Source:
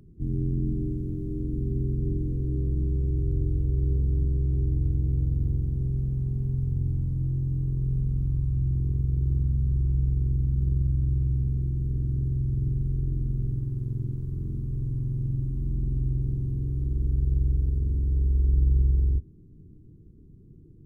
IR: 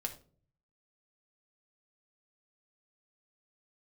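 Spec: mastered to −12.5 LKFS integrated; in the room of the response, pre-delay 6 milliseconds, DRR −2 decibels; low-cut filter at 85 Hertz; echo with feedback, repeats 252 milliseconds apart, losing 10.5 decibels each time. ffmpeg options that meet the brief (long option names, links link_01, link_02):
-filter_complex "[0:a]highpass=85,aecho=1:1:252|504|756:0.299|0.0896|0.0269,asplit=2[link_01][link_02];[1:a]atrim=start_sample=2205,adelay=6[link_03];[link_02][link_03]afir=irnorm=-1:irlink=0,volume=2dB[link_04];[link_01][link_04]amix=inputs=2:normalize=0,volume=8.5dB"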